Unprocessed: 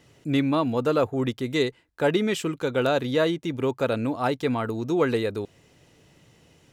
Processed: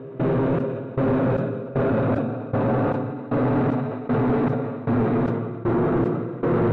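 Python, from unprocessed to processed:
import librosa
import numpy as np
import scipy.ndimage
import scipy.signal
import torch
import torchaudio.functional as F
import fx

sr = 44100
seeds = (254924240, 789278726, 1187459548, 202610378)

p1 = fx.low_shelf(x, sr, hz=110.0, db=9.5)
p2 = fx.level_steps(p1, sr, step_db=21)
p3 = p1 + F.gain(torch.from_numpy(p2), -2.5).numpy()
p4 = fx.rev_spring(p3, sr, rt60_s=3.9, pass_ms=(47,), chirp_ms=40, drr_db=6.5)
p5 = fx.paulstretch(p4, sr, seeds[0], factor=4.7, window_s=1.0, from_s=3.54)
p6 = fx.peak_eq(p5, sr, hz=170.0, db=7.0, octaves=1.7)
p7 = p6 + fx.echo_single(p6, sr, ms=683, db=-11.0, dry=0)
p8 = fx.step_gate(p7, sr, bpm=77, pattern='.xx..xx.', floor_db=-24.0, edge_ms=4.5)
p9 = fx.mod_noise(p8, sr, seeds[1], snr_db=27)
p10 = 10.0 ** (-20.0 / 20.0) * np.tanh(p9 / 10.0 ** (-20.0 / 20.0))
p11 = scipy.signal.sosfilt(scipy.signal.butter(2, 1600.0, 'lowpass', fs=sr, output='sos'), p10)
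p12 = fx.sustainer(p11, sr, db_per_s=37.0)
y = F.gain(torch.from_numpy(p12), 3.0).numpy()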